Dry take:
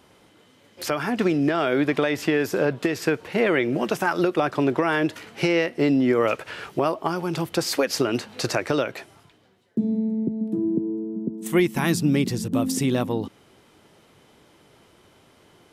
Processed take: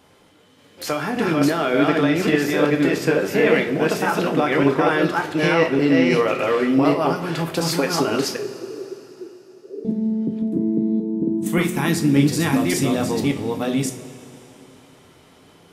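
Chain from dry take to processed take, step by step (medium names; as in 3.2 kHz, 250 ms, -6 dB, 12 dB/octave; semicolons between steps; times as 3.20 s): chunks repeated in reverse 579 ms, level -0.5 dB; 8.36–9.85 s: Butterworth band-pass 380 Hz, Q 5.8; two-slope reverb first 0.33 s, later 3.5 s, from -18 dB, DRR 3.5 dB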